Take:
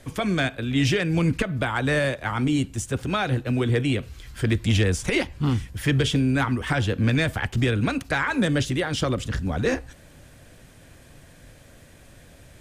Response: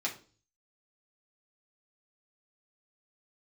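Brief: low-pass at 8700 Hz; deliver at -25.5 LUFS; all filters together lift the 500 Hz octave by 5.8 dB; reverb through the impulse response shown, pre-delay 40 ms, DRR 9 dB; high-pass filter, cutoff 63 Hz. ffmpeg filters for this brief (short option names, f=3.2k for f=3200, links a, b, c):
-filter_complex "[0:a]highpass=63,lowpass=8.7k,equalizer=f=500:t=o:g=7,asplit=2[a][b];[1:a]atrim=start_sample=2205,adelay=40[c];[b][c]afir=irnorm=-1:irlink=0,volume=-13.5dB[d];[a][d]amix=inputs=2:normalize=0,volume=-3.5dB"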